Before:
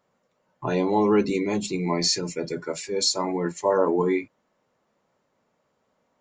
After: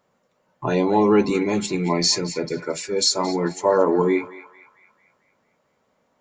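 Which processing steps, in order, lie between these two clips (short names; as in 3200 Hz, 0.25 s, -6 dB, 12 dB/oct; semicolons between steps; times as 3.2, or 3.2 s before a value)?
narrowing echo 0.224 s, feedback 53%, band-pass 1800 Hz, level -12 dB; gain +3.5 dB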